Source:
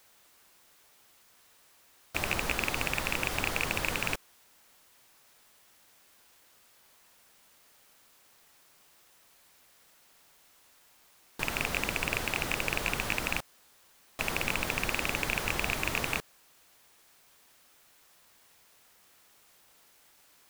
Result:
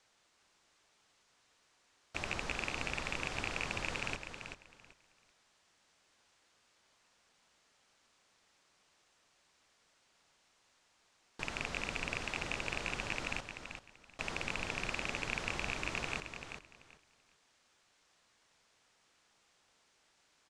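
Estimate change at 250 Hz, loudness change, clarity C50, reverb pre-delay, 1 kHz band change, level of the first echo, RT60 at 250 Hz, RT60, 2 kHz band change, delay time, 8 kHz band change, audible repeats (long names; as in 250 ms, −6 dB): −7.0 dB, −8.0 dB, no reverb audible, no reverb audible, −7.0 dB, −8.0 dB, no reverb audible, no reverb audible, −7.0 dB, 386 ms, −9.5 dB, 2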